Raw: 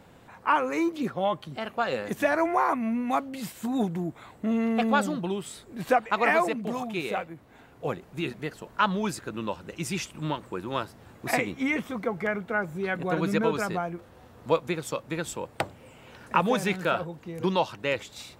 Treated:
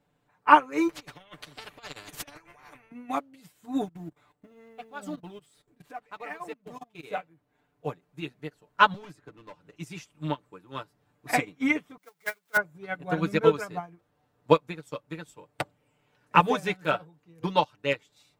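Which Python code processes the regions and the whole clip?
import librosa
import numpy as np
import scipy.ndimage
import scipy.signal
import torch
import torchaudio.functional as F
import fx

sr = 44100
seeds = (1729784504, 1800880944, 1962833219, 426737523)

y = fx.chain(x, sr, fx.tilt_eq(slope=-2.5),
    fx.over_compress(threshold_db=-28.0, ratio=-0.5),
    fx.spectral_comp(ratio=4.0), at=(0.89, 2.92))
y = fx.chain(y, sr, fx.law_mismatch(coded='mu'),
    fx.level_steps(step_db=15), at=(3.85, 7.03))
y = fx.chain(y, sr, fx.high_shelf(hz=4300.0, db=-7.0),
    fx.overload_stage(gain_db=27.5),
    fx.band_squash(depth_pct=70), at=(8.94, 9.76))
y = fx.chain(y, sr, fx.zero_step(step_db=-34.5),
    fx.tilt_eq(slope=4.0),
    fx.upward_expand(threshold_db=-37.0, expansion=2.5), at=(11.97, 12.57))
y = y + 0.71 * np.pad(y, (int(6.8 * sr / 1000.0), 0))[:len(y)]
y = fx.upward_expand(y, sr, threshold_db=-35.0, expansion=2.5)
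y = y * librosa.db_to_amplitude(7.0)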